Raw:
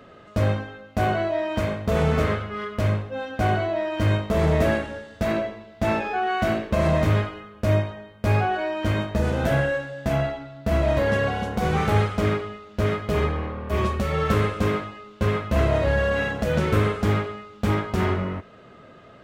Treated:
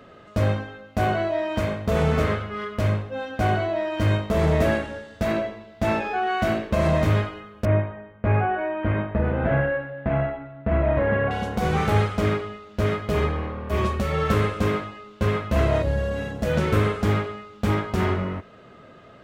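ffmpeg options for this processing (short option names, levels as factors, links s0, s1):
-filter_complex "[0:a]asettb=1/sr,asplit=3[s0][s1][s2];[s0]atrim=end=7.654[s3];[s1]atrim=start=7.65:end=11.31,asetpts=PTS-STARTPTS,afade=t=in:d=0.004:c=qsin,afade=t=out:st=3.656:d=0.004:c=qsin,lowpass=f=2300:w=0.5412,lowpass=f=2300:w=1.3066[s4];[s2]atrim=start=11.306[s5];[s3][s4]acrossfade=d=0.004:c1=hsin:c2=qsin[s6];[s6][s5]acrossfade=d=0.004:c1=qsin:c2=hsin,asettb=1/sr,asplit=3[s7][s8][s9];[s7]atrim=end=15.824[s10];[s8]atrim=start=15.82:end=16.43,asetpts=PTS-STARTPTS,afade=t=in:d=0.004:c=qsin,afade=t=out:st=0.606:d=0.004:c=qsin,equalizer=f=1700:w=0.41:g=-10.5[s11];[s9]atrim=start=16.426[s12];[s10][s11]acrossfade=d=0.004:c1=hsin:c2=qsin[s13];[s13][s12]acrossfade=d=0.004:c1=qsin:c2=hsin"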